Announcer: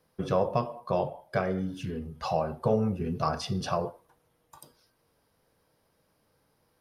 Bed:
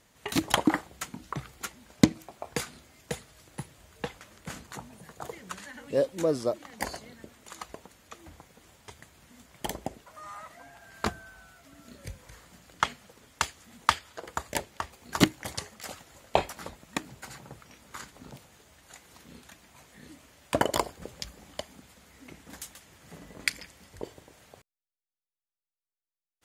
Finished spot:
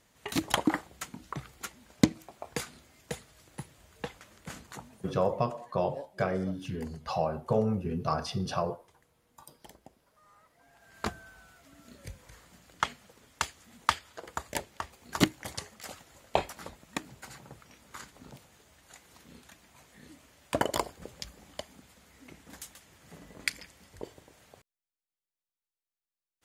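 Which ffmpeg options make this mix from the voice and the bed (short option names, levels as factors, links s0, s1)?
-filter_complex "[0:a]adelay=4850,volume=0.841[s0];[1:a]volume=4.22,afade=t=out:st=4.78:d=0.56:silence=0.16788,afade=t=in:st=10.54:d=0.58:silence=0.16788[s1];[s0][s1]amix=inputs=2:normalize=0"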